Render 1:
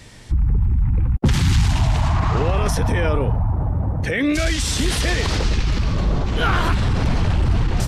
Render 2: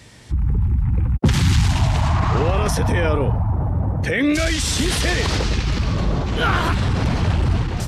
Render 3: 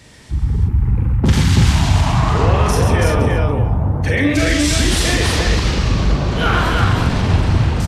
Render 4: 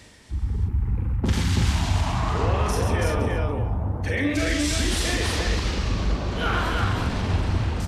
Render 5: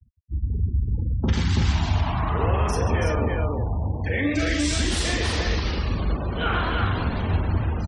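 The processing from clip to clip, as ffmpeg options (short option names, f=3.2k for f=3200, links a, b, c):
-af "dynaudnorm=f=100:g=7:m=3dB,highpass=53,volume=-1.5dB"
-af "aecho=1:1:42|134|331|372|613:0.708|0.562|0.708|0.422|0.112"
-af "equalizer=f=140:t=o:w=0.33:g=-9,areverse,acompressor=mode=upward:threshold=-25dB:ratio=2.5,areverse,volume=-8dB"
-filter_complex "[0:a]afftfilt=real='re*gte(hypot(re,im),0.0224)':imag='im*gte(hypot(re,im),0.0224)':win_size=1024:overlap=0.75,asplit=2[a][b];[b]adelay=13,volume=-13.5dB[c];[a][c]amix=inputs=2:normalize=0"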